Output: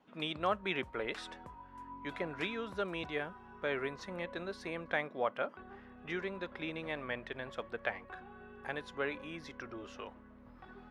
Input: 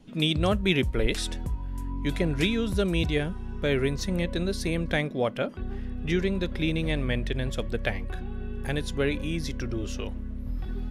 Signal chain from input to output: band-pass filter 1.1 kHz, Q 1.5

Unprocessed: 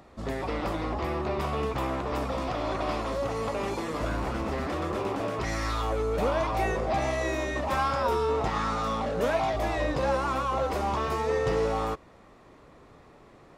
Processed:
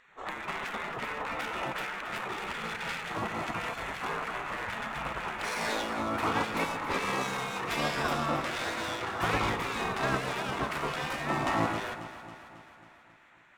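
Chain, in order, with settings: local Wiener filter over 9 samples; spectral gate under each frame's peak -15 dB weak; echo whose repeats swap between lows and highs 136 ms, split 1.1 kHz, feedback 76%, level -10 dB; trim +7 dB

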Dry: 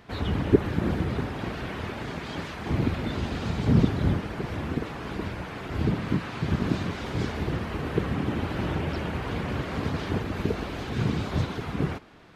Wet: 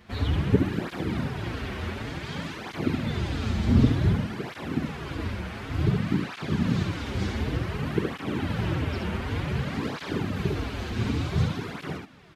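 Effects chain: peaking EQ 650 Hz -4.5 dB 2.3 oct; delay 71 ms -4.5 dB; cancelling through-zero flanger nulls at 0.55 Hz, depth 7.4 ms; trim +3.5 dB

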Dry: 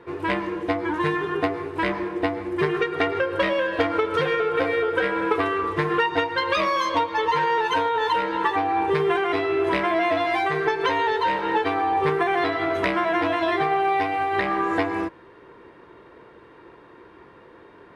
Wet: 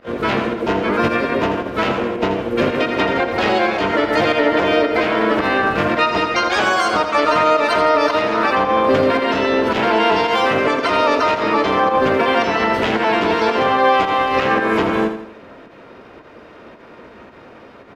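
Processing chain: volume shaper 111 bpm, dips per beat 1, -19 dB, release 88 ms; peak limiter -15 dBFS, peak gain reduction 5.5 dB; de-hum 181.4 Hz, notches 9; harmony voices -7 st -1 dB, +5 st 0 dB, +7 st -6 dB; on a send: feedback delay 82 ms, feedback 42%, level -9 dB; on the sum: trim +2.5 dB

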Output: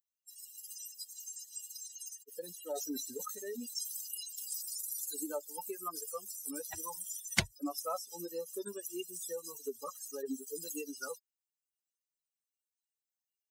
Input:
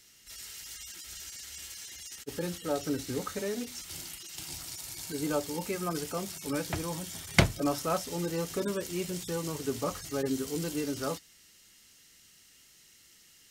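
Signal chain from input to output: expander on every frequency bin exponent 3; compression 2:1, threshold -46 dBFS, peak gain reduction 15.5 dB; treble shelf 2.3 kHz +9.5 dB; 2.42–5.00 s: decay stretcher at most 53 dB/s; trim +4.5 dB

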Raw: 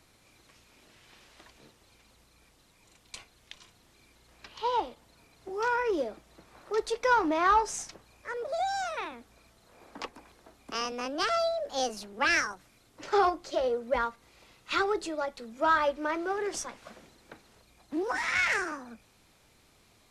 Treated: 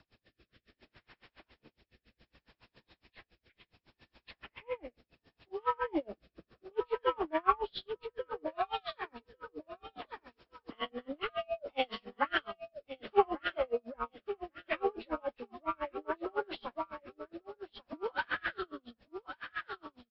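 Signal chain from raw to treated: knee-point frequency compression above 1 kHz 1.5:1; feedback delay 1146 ms, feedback 32%, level -8.5 dB; rotary cabinet horn 0.65 Hz; logarithmic tremolo 7.2 Hz, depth 35 dB; trim +3.5 dB

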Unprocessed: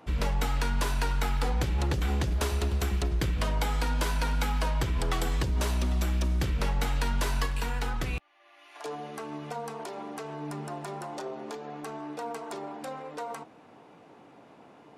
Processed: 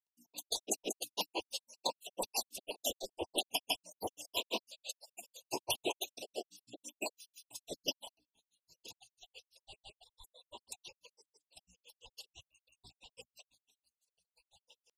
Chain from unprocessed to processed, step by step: random holes in the spectrogram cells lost 64%; whisper effect; spectral gate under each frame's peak -20 dB weak; Chebyshev band-stop 970–2600 Hz, order 4; hum notches 60/120/180/240/300 Hz; granulator 100 ms, grains 6 per s, spray 100 ms, pitch spread up and down by 0 st; trim +13.5 dB

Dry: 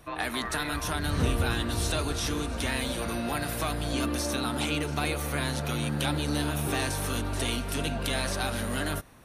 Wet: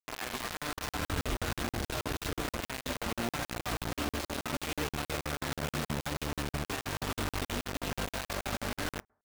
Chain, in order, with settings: band-passed feedback delay 98 ms, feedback 73%, band-pass 1.2 kHz, level -7 dB; peak limiter -21.5 dBFS, peak gain reduction 8 dB; distance through air 240 m; bit crusher 5-bit; on a send at -23 dB: reverberation RT60 0.55 s, pre-delay 4 ms; on the sum: crackling interface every 0.16 s, samples 2048, zero, from 0.57 s; trim -3 dB

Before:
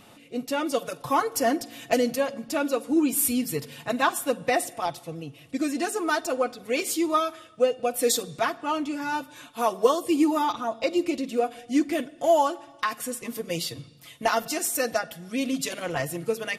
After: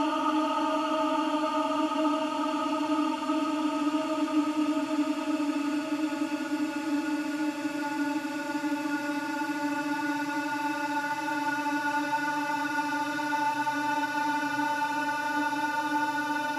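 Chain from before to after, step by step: pre-echo 143 ms -18 dB; Paulstretch 39×, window 0.50 s, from 8.75 s

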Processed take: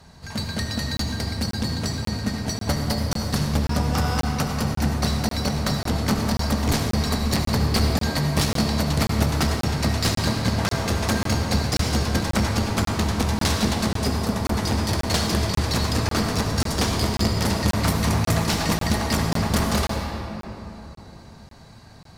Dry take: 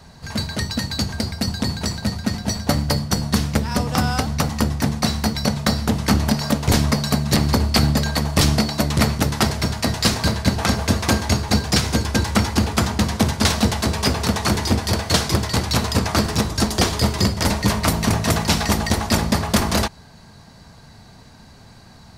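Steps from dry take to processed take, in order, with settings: 13.92–14.57 s: peaking EQ 1.7 kHz -> 5.5 kHz -7 dB 2.8 oct; one-sided clip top -18 dBFS; reverberation RT60 3.4 s, pre-delay 64 ms, DRR 2 dB; crackling interface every 0.54 s, samples 1024, zero, from 0.97 s; trim -4 dB

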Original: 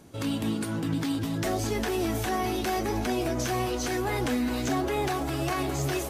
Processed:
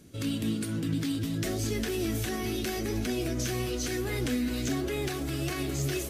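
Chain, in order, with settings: peaking EQ 880 Hz -15 dB 1.1 oct; on a send: flutter echo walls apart 10.8 m, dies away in 0.2 s

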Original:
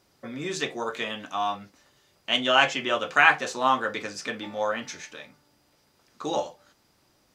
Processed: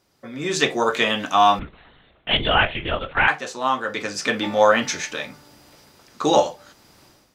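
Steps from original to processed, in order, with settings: level rider gain up to 16 dB; 1.59–3.28 s: LPC vocoder at 8 kHz whisper; trim -1 dB

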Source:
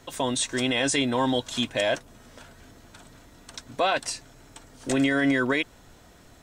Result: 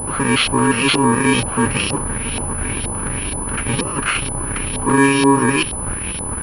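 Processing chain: bit-reversed sample order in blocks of 64 samples; in parallel at -8.5 dB: fuzz box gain 50 dB, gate -55 dBFS; on the sum: LFO low-pass saw up 2.1 Hz 740–3900 Hz; class-D stage that switches slowly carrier 10 kHz; trim +5.5 dB

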